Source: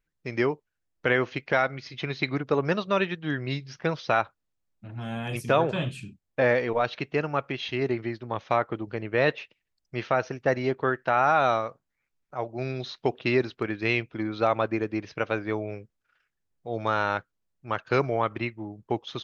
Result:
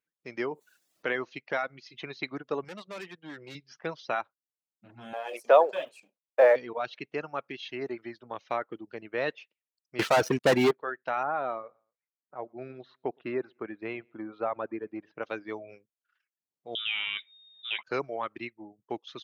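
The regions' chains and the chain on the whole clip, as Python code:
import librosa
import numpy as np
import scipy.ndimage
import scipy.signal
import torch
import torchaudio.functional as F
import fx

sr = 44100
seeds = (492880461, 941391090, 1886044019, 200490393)

y = fx.chain(x, sr, fx.peak_eq(hz=68.0, db=-10.0, octaves=1.4),
    fx.env_flatten(amount_pct=50), at=(0.51, 1.15))
y = fx.chain(y, sr, fx.highpass(hz=81.0, slope=12),
    fx.tube_stage(drive_db=29.0, bias=0.3), at=(2.64, 3.55))
y = fx.chain(y, sr, fx.law_mismatch(coded='A'),
    fx.highpass_res(hz=550.0, q=2.2),
    fx.peak_eq(hz=770.0, db=7.0, octaves=2.3), at=(5.13, 6.56))
y = fx.chain(y, sr, fx.leveller(passes=5),
    fx.low_shelf(hz=200.0, db=6.5), at=(9.99, 10.71))
y = fx.chain(y, sr, fx.lowpass(hz=1600.0, slope=12),
    fx.echo_feedback(ms=115, feedback_pct=36, wet_db=-22.5), at=(11.23, 15.23))
y = fx.chain(y, sr, fx.freq_invert(carrier_hz=3700),
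    fx.doubler(ms=14.0, db=-8.5),
    fx.env_flatten(amount_pct=50), at=(16.75, 17.83))
y = scipy.signal.sosfilt(scipy.signal.butter(2, 220.0, 'highpass', fs=sr, output='sos'), y)
y = fx.dereverb_blind(y, sr, rt60_s=0.65)
y = F.gain(torch.from_numpy(y), -6.5).numpy()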